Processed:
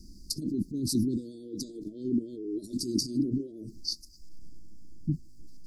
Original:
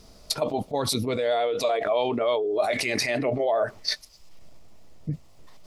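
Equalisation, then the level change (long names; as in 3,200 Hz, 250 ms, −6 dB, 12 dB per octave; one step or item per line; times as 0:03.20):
Chebyshev band-stop filter 340–4,700 Hz, order 5
parametric band 110 Hz −7 dB 1.1 octaves
high-shelf EQ 2,000 Hz −8.5 dB
+5.5 dB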